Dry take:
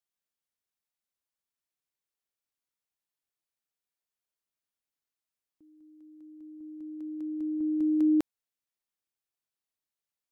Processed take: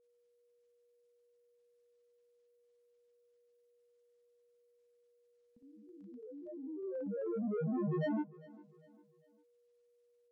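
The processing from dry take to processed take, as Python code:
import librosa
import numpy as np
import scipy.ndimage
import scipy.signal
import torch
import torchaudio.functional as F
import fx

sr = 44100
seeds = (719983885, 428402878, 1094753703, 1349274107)

p1 = 10.0 ** (-33.5 / 20.0) * np.tanh(x / 10.0 ** (-33.5 / 20.0))
p2 = fx.env_lowpass_down(p1, sr, base_hz=1200.0, full_db=-39.0)
p3 = fx.granulator(p2, sr, seeds[0], grain_ms=100.0, per_s=20.0, spray_ms=100.0, spread_st=12)
p4 = p3 + 10.0 ** (-72.0 / 20.0) * np.sin(2.0 * np.pi * 480.0 * np.arange(len(p3)) / sr)
p5 = p4 + fx.echo_feedback(p4, sr, ms=400, feedback_pct=41, wet_db=-21.5, dry=0)
y = p5 * librosa.db_to_amplitude(1.5)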